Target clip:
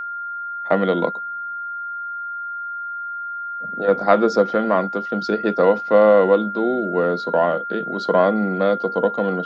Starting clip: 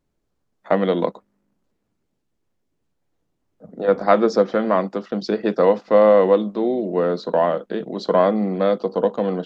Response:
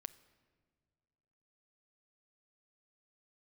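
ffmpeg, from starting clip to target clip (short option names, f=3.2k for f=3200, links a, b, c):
-af "aeval=exprs='val(0)+0.0501*sin(2*PI*1400*n/s)':c=same"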